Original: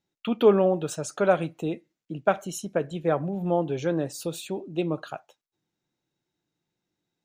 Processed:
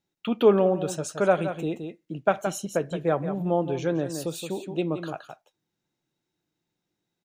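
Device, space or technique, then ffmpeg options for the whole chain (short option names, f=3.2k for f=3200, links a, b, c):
ducked delay: -filter_complex "[0:a]asplit=3[a][b][c];[b]adelay=171,volume=-7dB[d];[c]apad=whole_len=326956[e];[d][e]sidechaincompress=threshold=-31dB:ratio=8:attack=30:release=125[f];[a][f]amix=inputs=2:normalize=0"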